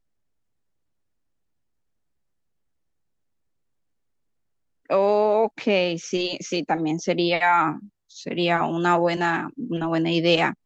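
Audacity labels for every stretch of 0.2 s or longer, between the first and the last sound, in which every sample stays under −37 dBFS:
7.850000	8.160000	silence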